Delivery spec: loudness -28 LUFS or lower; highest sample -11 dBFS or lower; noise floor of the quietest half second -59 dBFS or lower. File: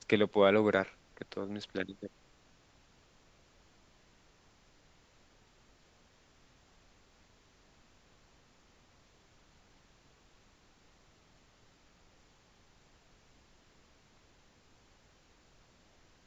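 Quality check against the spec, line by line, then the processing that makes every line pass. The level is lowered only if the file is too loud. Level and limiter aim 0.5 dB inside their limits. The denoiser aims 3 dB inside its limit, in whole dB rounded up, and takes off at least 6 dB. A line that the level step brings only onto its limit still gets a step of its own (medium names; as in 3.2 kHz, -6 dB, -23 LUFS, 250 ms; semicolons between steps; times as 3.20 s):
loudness -31.5 LUFS: pass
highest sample -12.5 dBFS: pass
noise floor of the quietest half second -65 dBFS: pass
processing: none needed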